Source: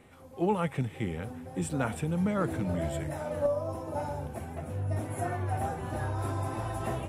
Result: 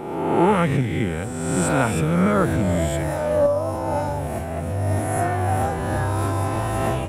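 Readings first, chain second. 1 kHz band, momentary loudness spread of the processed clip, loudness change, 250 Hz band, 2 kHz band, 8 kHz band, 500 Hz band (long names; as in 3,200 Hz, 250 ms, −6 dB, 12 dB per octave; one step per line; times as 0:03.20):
+12.0 dB, 7 LU, +11.0 dB, +10.5 dB, +12.5 dB, +14.0 dB, +11.0 dB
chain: peak hold with a rise ahead of every peak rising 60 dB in 1.41 s
level +8 dB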